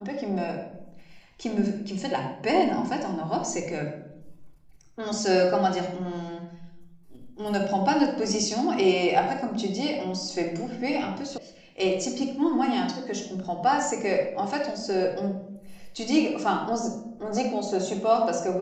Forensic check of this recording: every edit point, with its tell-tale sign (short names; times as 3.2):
11.38 sound cut off